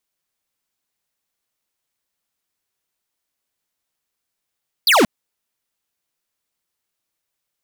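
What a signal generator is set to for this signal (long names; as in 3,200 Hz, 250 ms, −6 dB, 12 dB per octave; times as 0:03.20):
single falling chirp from 5,000 Hz, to 190 Hz, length 0.18 s square, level −12.5 dB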